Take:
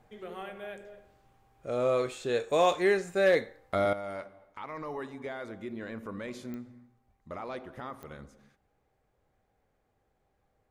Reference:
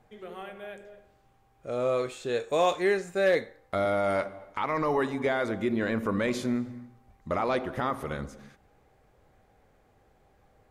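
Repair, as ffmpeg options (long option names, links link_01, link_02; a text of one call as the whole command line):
ffmpeg -i in.wav -af "adeclick=threshold=4,asetnsamples=nb_out_samples=441:pad=0,asendcmd='3.93 volume volume 11.5dB',volume=0dB" out.wav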